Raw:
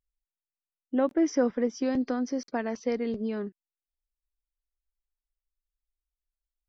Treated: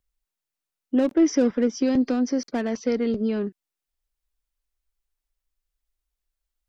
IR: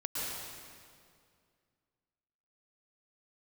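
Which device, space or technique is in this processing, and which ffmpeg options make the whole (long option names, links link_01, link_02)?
one-band saturation: -filter_complex "[0:a]acrossover=split=480|2300[link_01][link_02][link_03];[link_02]asoftclip=type=tanh:threshold=-38.5dB[link_04];[link_01][link_04][link_03]amix=inputs=3:normalize=0,volume=7dB"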